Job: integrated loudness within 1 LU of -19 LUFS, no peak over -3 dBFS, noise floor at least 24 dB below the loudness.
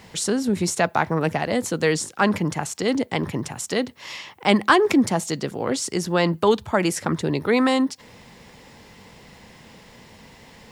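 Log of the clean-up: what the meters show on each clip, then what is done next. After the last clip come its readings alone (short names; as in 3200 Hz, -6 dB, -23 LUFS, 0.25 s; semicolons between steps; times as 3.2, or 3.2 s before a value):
loudness -22.0 LUFS; peak -2.5 dBFS; loudness target -19.0 LUFS
-> gain +3 dB; limiter -3 dBFS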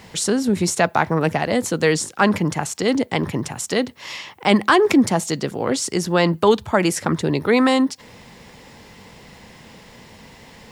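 loudness -19.5 LUFS; peak -3.0 dBFS; noise floor -46 dBFS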